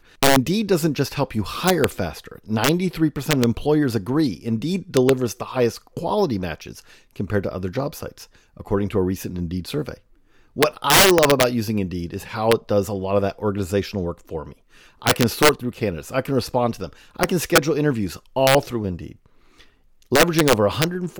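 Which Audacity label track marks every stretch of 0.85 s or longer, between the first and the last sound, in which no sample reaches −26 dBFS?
19.070000	20.120000	silence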